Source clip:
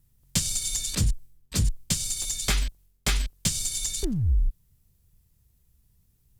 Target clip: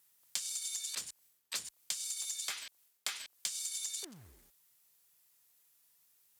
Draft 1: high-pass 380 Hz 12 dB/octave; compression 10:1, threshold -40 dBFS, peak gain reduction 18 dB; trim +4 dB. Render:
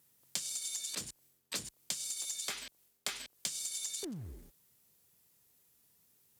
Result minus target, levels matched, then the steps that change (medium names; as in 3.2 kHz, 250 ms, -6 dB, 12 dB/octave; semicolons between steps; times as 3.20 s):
500 Hz band +9.0 dB
change: high-pass 870 Hz 12 dB/octave